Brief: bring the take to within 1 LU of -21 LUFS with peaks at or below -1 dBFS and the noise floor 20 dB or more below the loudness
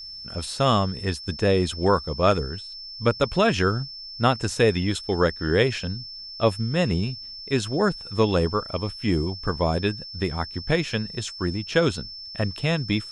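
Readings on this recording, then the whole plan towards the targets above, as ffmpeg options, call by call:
steady tone 5300 Hz; tone level -36 dBFS; loudness -24.5 LUFS; peak -6.5 dBFS; loudness target -21.0 LUFS
-> -af "bandreject=f=5.3k:w=30"
-af "volume=3.5dB"

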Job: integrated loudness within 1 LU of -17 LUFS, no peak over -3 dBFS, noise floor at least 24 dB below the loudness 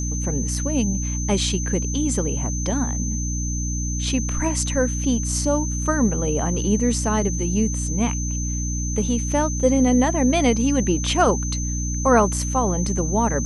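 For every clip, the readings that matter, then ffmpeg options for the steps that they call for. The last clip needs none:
hum 60 Hz; harmonics up to 300 Hz; hum level -23 dBFS; steady tone 6200 Hz; tone level -29 dBFS; loudness -21.5 LUFS; peak -3.5 dBFS; loudness target -17.0 LUFS
-> -af "bandreject=f=60:t=h:w=6,bandreject=f=120:t=h:w=6,bandreject=f=180:t=h:w=6,bandreject=f=240:t=h:w=6,bandreject=f=300:t=h:w=6"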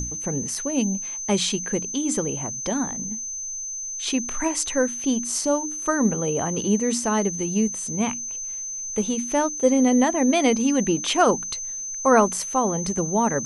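hum none; steady tone 6200 Hz; tone level -29 dBFS
-> -af "bandreject=f=6.2k:w=30"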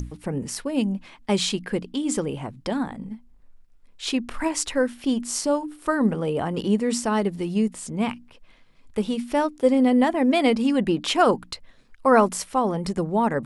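steady tone none; loudness -24.0 LUFS; peak -6.0 dBFS; loudness target -17.0 LUFS
-> -af "volume=7dB,alimiter=limit=-3dB:level=0:latency=1"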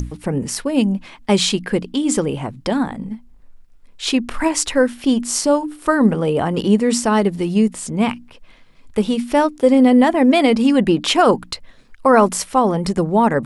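loudness -17.5 LUFS; peak -3.0 dBFS; noise floor -47 dBFS

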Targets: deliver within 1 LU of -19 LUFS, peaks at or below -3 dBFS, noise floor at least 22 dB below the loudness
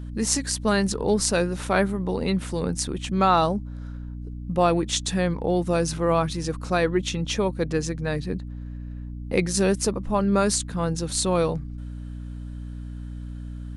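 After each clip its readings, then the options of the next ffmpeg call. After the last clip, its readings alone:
hum 60 Hz; harmonics up to 300 Hz; hum level -32 dBFS; loudness -24.0 LUFS; peak -4.0 dBFS; loudness target -19.0 LUFS
-> -af "bandreject=f=60:t=h:w=4,bandreject=f=120:t=h:w=4,bandreject=f=180:t=h:w=4,bandreject=f=240:t=h:w=4,bandreject=f=300:t=h:w=4"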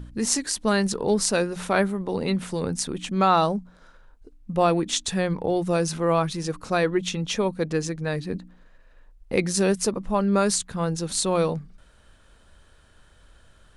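hum none; loudness -24.5 LUFS; peak -4.5 dBFS; loudness target -19.0 LUFS
-> -af "volume=5.5dB,alimiter=limit=-3dB:level=0:latency=1"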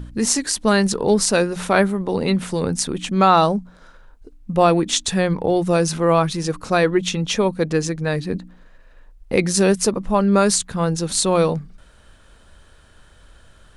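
loudness -19.0 LUFS; peak -3.0 dBFS; noise floor -50 dBFS

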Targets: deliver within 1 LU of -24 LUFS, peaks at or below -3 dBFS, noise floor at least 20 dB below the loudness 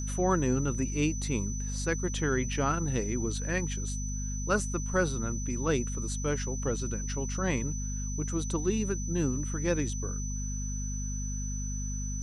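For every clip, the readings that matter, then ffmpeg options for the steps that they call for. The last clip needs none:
hum 50 Hz; harmonics up to 250 Hz; hum level -32 dBFS; steady tone 6000 Hz; tone level -39 dBFS; loudness -31.5 LUFS; peak -12.0 dBFS; loudness target -24.0 LUFS
-> -af "bandreject=f=50:t=h:w=4,bandreject=f=100:t=h:w=4,bandreject=f=150:t=h:w=4,bandreject=f=200:t=h:w=4,bandreject=f=250:t=h:w=4"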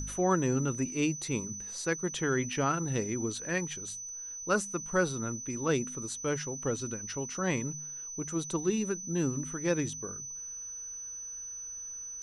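hum none; steady tone 6000 Hz; tone level -39 dBFS
-> -af "bandreject=f=6k:w=30"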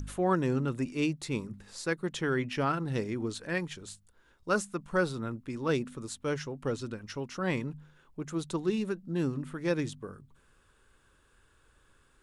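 steady tone none; loudness -33.0 LUFS; peak -13.5 dBFS; loudness target -24.0 LUFS
-> -af "volume=9dB"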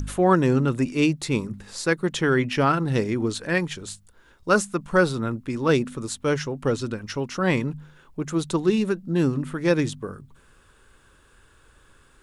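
loudness -24.0 LUFS; peak -4.5 dBFS; noise floor -57 dBFS

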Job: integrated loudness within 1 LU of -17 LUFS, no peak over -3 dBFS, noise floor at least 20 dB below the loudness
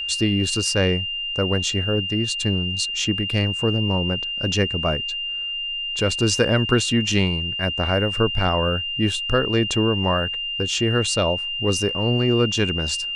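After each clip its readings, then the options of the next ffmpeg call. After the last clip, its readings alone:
steady tone 2800 Hz; tone level -25 dBFS; loudness -21.0 LUFS; peak -4.0 dBFS; loudness target -17.0 LUFS
-> -af "bandreject=f=2.8k:w=30"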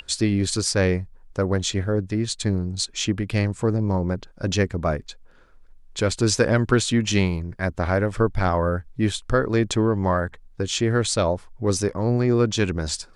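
steady tone none; loudness -23.0 LUFS; peak -4.5 dBFS; loudness target -17.0 LUFS
-> -af "volume=6dB,alimiter=limit=-3dB:level=0:latency=1"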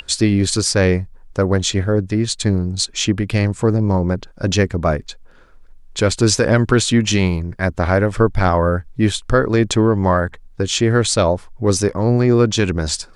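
loudness -17.5 LUFS; peak -3.0 dBFS; noise floor -44 dBFS

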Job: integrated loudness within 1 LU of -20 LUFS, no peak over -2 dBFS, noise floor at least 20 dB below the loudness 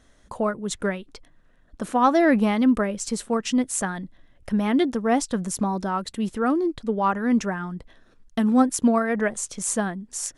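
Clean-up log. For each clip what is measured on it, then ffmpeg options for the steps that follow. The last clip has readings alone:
loudness -23.5 LUFS; peak -6.5 dBFS; loudness target -20.0 LUFS
-> -af "volume=3.5dB"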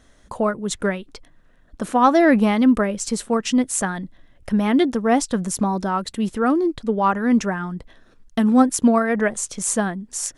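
loudness -20.0 LUFS; peak -3.0 dBFS; noise floor -54 dBFS

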